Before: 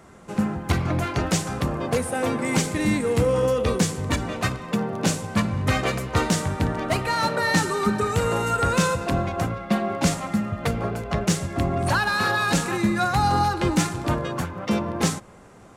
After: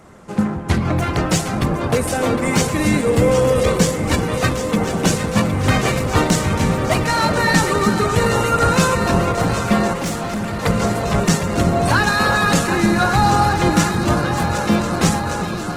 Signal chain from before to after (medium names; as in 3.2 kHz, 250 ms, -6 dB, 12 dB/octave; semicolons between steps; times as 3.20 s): echo whose repeats swap between lows and highs 381 ms, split 1.3 kHz, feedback 90%, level -8 dB; 9.93–10.63 s: valve stage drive 24 dB, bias 0.5; trim +5 dB; Opus 16 kbps 48 kHz